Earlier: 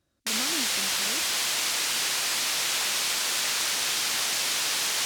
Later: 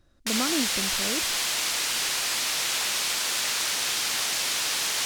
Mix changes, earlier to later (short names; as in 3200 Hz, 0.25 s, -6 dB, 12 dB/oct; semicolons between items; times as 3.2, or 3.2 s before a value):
speech +9.0 dB; master: remove HPF 82 Hz